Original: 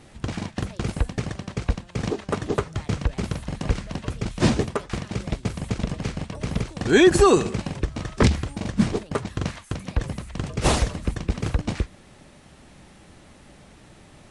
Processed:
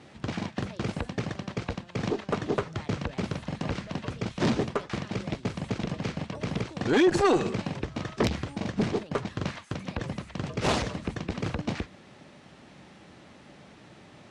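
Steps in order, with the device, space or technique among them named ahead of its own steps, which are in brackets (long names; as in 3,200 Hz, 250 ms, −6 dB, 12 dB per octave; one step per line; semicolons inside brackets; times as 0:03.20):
valve radio (band-pass filter 120–5,400 Hz; tube saturation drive 14 dB, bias 0.2; saturating transformer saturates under 360 Hz)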